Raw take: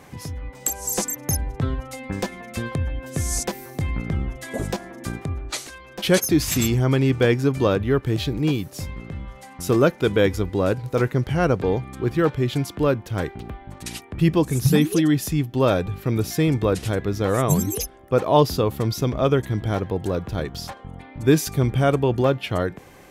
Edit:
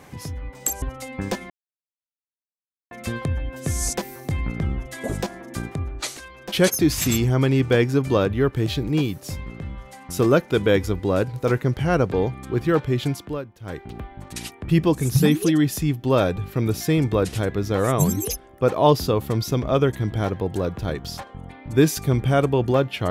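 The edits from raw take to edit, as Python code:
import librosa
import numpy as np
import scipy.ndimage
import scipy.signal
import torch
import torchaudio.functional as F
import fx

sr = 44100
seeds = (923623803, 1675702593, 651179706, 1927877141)

y = fx.edit(x, sr, fx.cut(start_s=0.82, length_s=0.91),
    fx.insert_silence(at_s=2.41, length_s=1.41),
    fx.fade_down_up(start_s=12.56, length_s=0.91, db=-14.0, fade_s=0.37), tone=tone)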